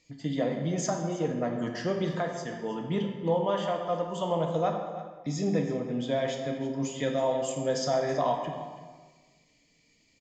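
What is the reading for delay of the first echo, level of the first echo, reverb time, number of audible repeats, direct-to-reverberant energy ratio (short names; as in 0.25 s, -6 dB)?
0.325 s, -15.5 dB, 1.4 s, 1, 1.5 dB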